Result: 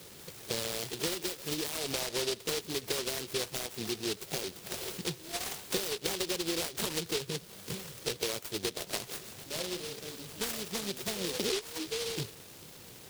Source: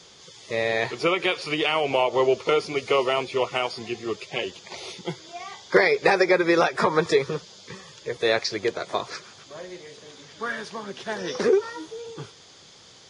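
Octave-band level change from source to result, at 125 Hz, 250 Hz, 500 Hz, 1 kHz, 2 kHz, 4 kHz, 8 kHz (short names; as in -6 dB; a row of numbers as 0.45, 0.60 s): -6.0, -10.0, -14.0, -17.0, -14.5, -3.5, +6.0 dB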